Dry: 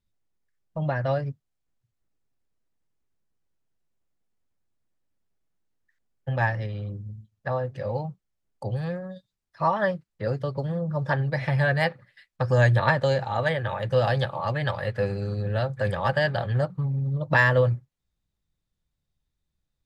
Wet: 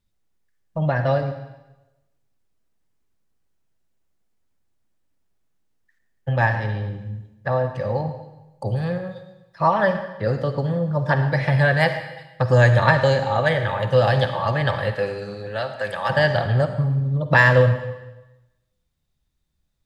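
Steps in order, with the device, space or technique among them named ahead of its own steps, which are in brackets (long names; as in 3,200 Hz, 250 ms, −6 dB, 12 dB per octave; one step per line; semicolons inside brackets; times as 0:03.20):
saturated reverb return (on a send at −7 dB: convolution reverb RT60 1.0 s, pre-delay 42 ms + soft clipping −16 dBFS, distortion −20 dB)
0:14.95–0:16.09: on the sum: high-pass filter 360 Hz → 1,000 Hz 6 dB per octave
level +5 dB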